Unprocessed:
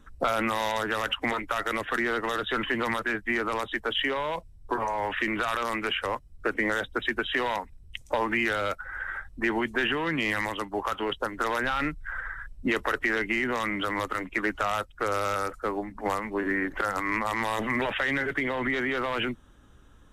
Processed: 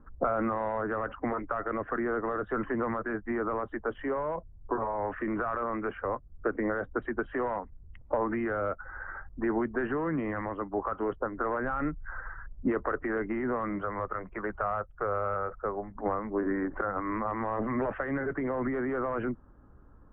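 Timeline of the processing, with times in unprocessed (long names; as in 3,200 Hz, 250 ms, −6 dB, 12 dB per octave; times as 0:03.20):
0:13.78–0:15.97: parametric band 280 Hz −14 dB 0.44 octaves
whole clip: inverse Chebyshev low-pass filter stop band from 7,200 Hz, stop band 80 dB; dynamic equaliser 900 Hz, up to −6 dB, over −46 dBFS, Q 4.1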